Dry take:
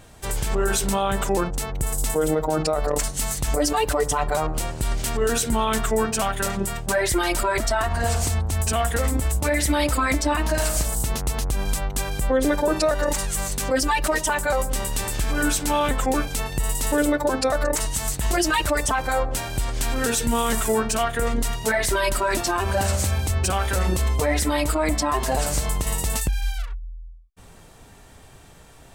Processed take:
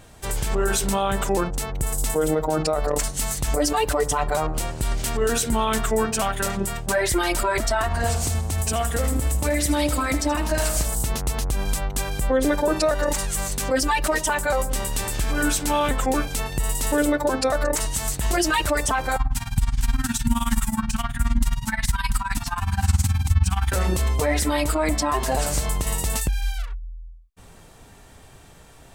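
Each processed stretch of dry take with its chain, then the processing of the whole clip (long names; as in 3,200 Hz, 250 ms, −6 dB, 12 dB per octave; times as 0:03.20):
0:08.10–0:10.51: high-pass filter 45 Hz + dynamic equaliser 1,600 Hz, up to −4 dB, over −35 dBFS, Q 0.72 + repeating echo 78 ms, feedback 54%, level −13.5 dB
0:19.16–0:23.72: elliptic band-stop filter 250–820 Hz + amplitude tremolo 19 Hz, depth 86% + low-shelf EQ 290 Hz +8.5 dB
whole clip: no processing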